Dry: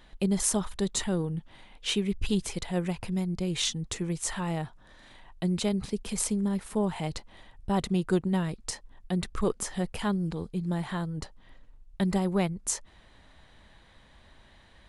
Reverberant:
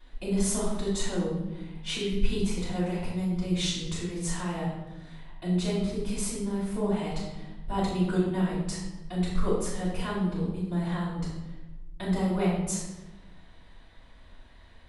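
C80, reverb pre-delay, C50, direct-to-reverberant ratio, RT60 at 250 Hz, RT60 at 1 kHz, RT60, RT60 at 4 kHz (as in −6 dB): 4.0 dB, 3 ms, 1.0 dB, −10.5 dB, 1.5 s, 0.90 s, 1.0 s, 0.75 s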